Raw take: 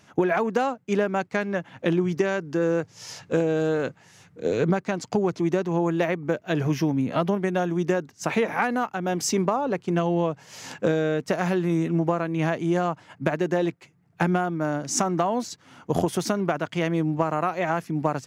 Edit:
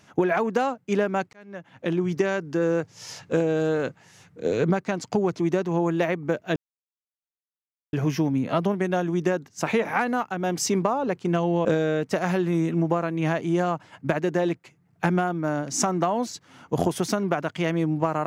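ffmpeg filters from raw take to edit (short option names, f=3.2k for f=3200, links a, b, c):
-filter_complex "[0:a]asplit=4[a][b][c][d];[a]atrim=end=1.33,asetpts=PTS-STARTPTS,afade=t=out:st=1.326:d=0.004:c=hsin[e];[b]atrim=start=1.33:end=6.56,asetpts=PTS-STARTPTS,afade=t=in:d=0.81,afade=t=out:st=5.226:d=0.004:c=hsin,apad=pad_dur=1.37[f];[c]atrim=start=6.56:end=10.282,asetpts=PTS-STARTPTS,afade=t=in:d=0.004:c=hsin[g];[d]atrim=start=10.818[h];[e][f][g]concat=n=3:v=0:a=1[i];[i][h]acrossfade=d=0.004:c1=hsin:c2=hsin"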